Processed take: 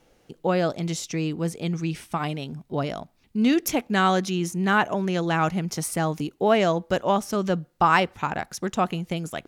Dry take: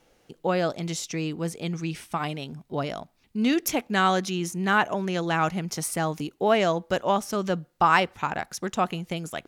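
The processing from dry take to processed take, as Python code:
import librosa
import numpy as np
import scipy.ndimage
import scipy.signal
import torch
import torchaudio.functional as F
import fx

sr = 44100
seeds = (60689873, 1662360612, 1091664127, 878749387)

y = fx.low_shelf(x, sr, hz=450.0, db=4.0)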